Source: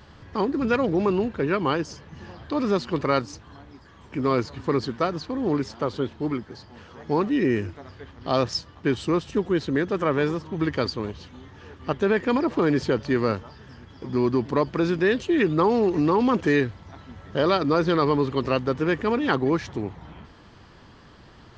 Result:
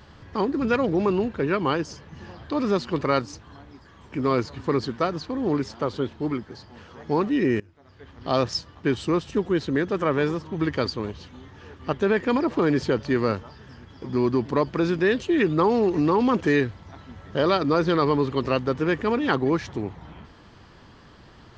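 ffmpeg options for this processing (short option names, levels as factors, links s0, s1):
-filter_complex "[0:a]asplit=2[s0][s1];[s0]atrim=end=7.6,asetpts=PTS-STARTPTS,afade=t=out:st=7.596:d=0.004:c=hsin:silence=0.0891251[s2];[s1]atrim=start=7.6,asetpts=PTS-STARTPTS,afade=t=in:d=0.57:c=qua:silence=0.0891251[s3];[s2][s3]concat=n=2:v=0:a=1"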